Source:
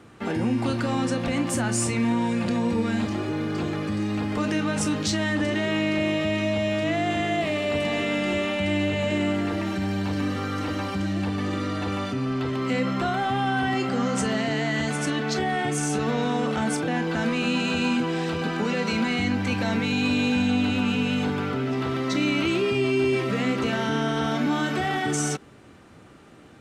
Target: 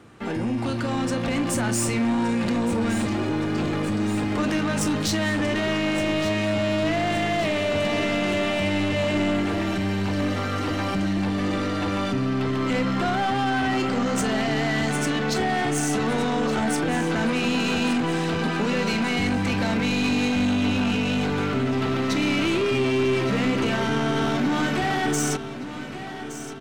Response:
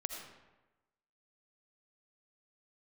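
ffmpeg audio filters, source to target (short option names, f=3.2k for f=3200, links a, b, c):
-af "dynaudnorm=f=720:g=3:m=4.5dB,aeval=exprs='0.398*(cos(1*acos(clip(val(0)/0.398,-1,1)))-cos(1*PI/2))+0.0112*(cos(8*acos(clip(val(0)/0.398,-1,1)))-cos(8*PI/2))':c=same,asoftclip=type=tanh:threshold=-19dB,aecho=1:1:1169|2338|3507|4676|5845|7014:0.237|0.133|0.0744|0.0416|0.0233|0.0131"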